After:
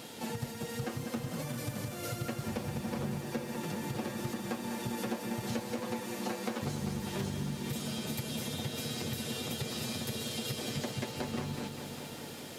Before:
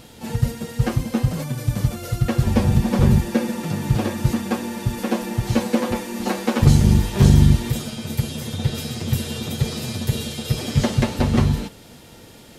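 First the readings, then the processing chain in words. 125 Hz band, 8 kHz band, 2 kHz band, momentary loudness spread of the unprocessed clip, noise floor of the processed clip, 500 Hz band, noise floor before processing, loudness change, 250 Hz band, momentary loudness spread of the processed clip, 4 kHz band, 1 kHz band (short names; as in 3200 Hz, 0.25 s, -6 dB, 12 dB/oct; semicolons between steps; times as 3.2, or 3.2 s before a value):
-20.5 dB, -9.0 dB, -10.0 dB, 10 LU, -44 dBFS, -11.5 dB, -44 dBFS, -16.0 dB, -15.0 dB, 3 LU, -8.5 dB, -11.0 dB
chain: Bessel high-pass 220 Hz, order 2; compressor 6:1, threshold -35 dBFS, peak gain reduction 19 dB; lo-fi delay 0.2 s, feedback 80%, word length 10-bit, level -8.5 dB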